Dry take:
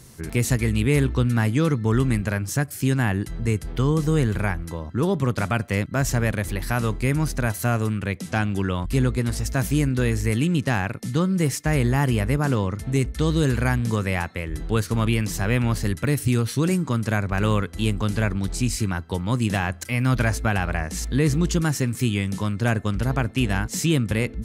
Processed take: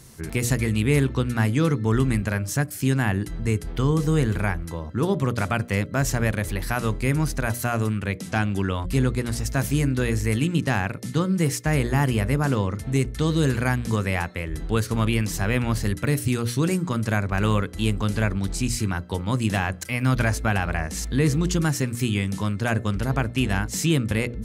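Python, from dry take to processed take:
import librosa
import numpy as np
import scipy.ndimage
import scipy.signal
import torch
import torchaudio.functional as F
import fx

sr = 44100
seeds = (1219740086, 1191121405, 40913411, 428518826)

y = fx.hum_notches(x, sr, base_hz=60, count=10)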